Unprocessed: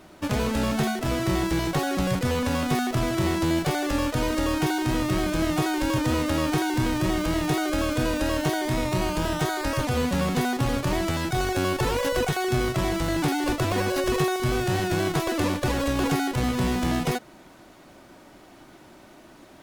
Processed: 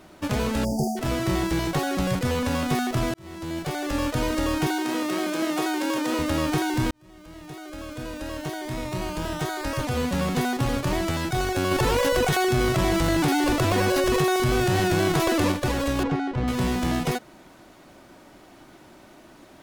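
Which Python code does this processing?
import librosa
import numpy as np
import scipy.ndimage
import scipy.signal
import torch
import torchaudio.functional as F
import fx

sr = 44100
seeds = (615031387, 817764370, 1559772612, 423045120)

y = fx.spec_erase(x, sr, start_s=0.64, length_s=0.33, low_hz=890.0, high_hz=4500.0)
y = fx.highpass(y, sr, hz=240.0, slope=24, at=(4.67, 6.19))
y = fx.env_flatten(y, sr, amount_pct=70, at=(11.71, 15.52))
y = fx.spacing_loss(y, sr, db_at_10k=27, at=(16.03, 16.48))
y = fx.edit(y, sr, fx.fade_in_span(start_s=3.14, length_s=0.93),
    fx.fade_in_span(start_s=6.91, length_s=3.53), tone=tone)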